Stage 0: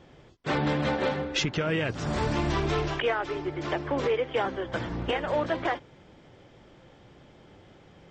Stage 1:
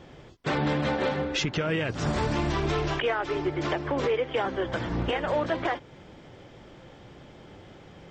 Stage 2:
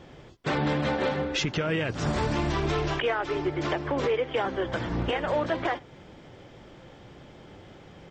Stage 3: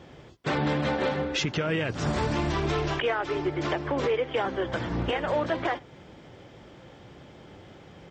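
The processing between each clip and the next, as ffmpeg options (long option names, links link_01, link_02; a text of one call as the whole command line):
ffmpeg -i in.wav -af "alimiter=limit=-23dB:level=0:latency=1:release=248,volume=5dB" out.wav
ffmpeg -i in.wav -filter_complex "[0:a]asplit=2[link_01][link_02];[link_02]adelay=93.29,volume=-29dB,highshelf=frequency=4000:gain=-2.1[link_03];[link_01][link_03]amix=inputs=2:normalize=0" out.wav
ffmpeg -i in.wav -af "highpass=41" out.wav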